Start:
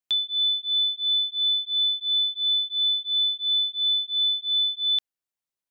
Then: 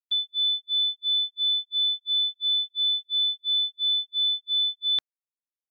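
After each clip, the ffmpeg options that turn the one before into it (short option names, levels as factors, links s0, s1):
-filter_complex "[0:a]equalizer=f=2900:w=3.2:g=-14,acrossover=split=3500[s0][s1];[s1]acompressor=threshold=0.00501:ratio=4:attack=1:release=60[s2];[s0][s2]amix=inputs=2:normalize=0,agate=range=0.01:threshold=0.0178:ratio=16:detection=peak,volume=2.66"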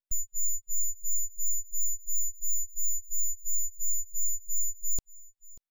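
-af "aeval=exprs='abs(val(0))':c=same,aeval=exprs='0.106*(cos(1*acos(clip(val(0)/0.106,-1,1)))-cos(1*PI/2))+0.0075*(cos(3*acos(clip(val(0)/0.106,-1,1)))-cos(3*PI/2))+0.0106*(cos(6*acos(clip(val(0)/0.106,-1,1)))-cos(6*PI/2))':c=same,aecho=1:1:588:0.0841,volume=0.891"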